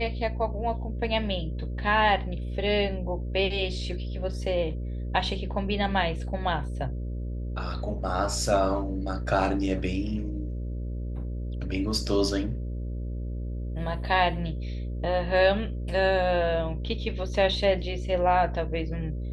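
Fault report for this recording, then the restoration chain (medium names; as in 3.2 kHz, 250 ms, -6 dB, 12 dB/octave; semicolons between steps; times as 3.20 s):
buzz 60 Hz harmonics 10 -32 dBFS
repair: de-hum 60 Hz, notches 10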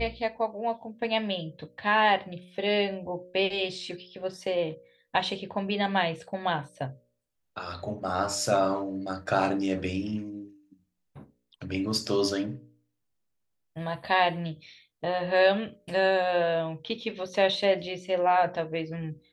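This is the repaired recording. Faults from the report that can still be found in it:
nothing left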